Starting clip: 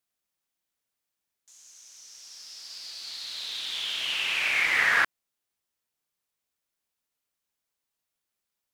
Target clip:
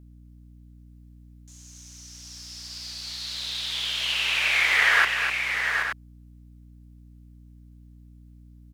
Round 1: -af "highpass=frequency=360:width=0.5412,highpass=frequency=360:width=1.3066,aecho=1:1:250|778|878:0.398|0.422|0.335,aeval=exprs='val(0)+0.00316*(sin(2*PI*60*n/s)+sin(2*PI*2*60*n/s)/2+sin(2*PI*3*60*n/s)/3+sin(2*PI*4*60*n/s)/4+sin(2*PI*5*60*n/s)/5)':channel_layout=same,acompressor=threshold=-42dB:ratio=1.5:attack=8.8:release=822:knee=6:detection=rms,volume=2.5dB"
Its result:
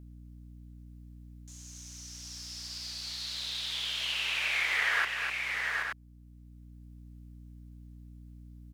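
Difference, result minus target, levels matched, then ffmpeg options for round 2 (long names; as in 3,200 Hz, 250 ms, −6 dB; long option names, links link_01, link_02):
downward compressor: peak gain reduction +9.5 dB
-af "highpass=frequency=360:width=0.5412,highpass=frequency=360:width=1.3066,aecho=1:1:250|778|878:0.398|0.422|0.335,aeval=exprs='val(0)+0.00316*(sin(2*PI*60*n/s)+sin(2*PI*2*60*n/s)/2+sin(2*PI*3*60*n/s)/3+sin(2*PI*4*60*n/s)/4+sin(2*PI*5*60*n/s)/5)':channel_layout=same,volume=2.5dB"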